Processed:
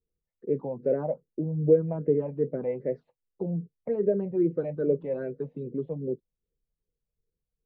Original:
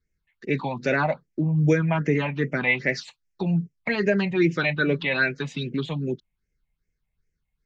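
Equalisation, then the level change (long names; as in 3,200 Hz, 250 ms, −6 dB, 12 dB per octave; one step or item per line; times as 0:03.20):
low-pass with resonance 490 Hz, resonance Q 4.5
−9.0 dB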